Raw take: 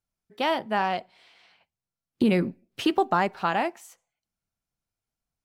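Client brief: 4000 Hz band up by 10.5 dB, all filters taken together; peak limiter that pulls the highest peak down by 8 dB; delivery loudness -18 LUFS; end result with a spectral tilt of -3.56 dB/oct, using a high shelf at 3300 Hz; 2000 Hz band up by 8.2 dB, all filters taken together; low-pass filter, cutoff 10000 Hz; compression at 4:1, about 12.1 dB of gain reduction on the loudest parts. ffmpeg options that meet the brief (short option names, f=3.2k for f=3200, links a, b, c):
-af "lowpass=10k,equalizer=f=2k:t=o:g=6.5,highshelf=f=3.3k:g=5,equalizer=f=4k:t=o:g=8.5,acompressor=threshold=-31dB:ratio=4,volume=20.5dB,alimiter=limit=-4dB:level=0:latency=1"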